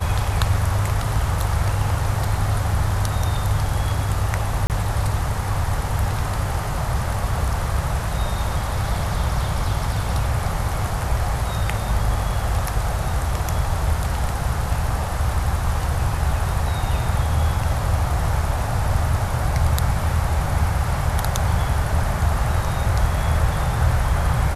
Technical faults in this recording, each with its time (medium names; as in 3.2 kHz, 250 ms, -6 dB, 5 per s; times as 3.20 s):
4.67–4.70 s: dropout 28 ms